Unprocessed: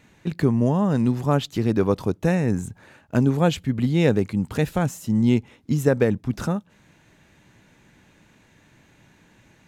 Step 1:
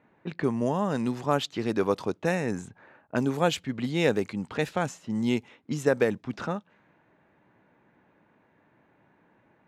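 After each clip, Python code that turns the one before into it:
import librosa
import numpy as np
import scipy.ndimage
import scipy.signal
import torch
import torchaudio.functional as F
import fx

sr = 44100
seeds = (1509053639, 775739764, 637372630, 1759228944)

y = fx.env_lowpass(x, sr, base_hz=1100.0, full_db=-15.5)
y = fx.highpass(y, sr, hz=510.0, slope=6)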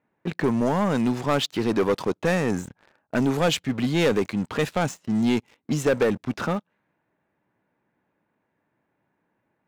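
y = fx.leveller(x, sr, passes=3)
y = y * 10.0 ** (-4.5 / 20.0)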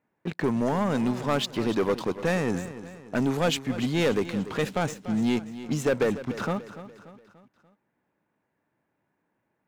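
y = fx.echo_feedback(x, sr, ms=291, feedback_pct=47, wet_db=-14)
y = y * 10.0 ** (-3.0 / 20.0)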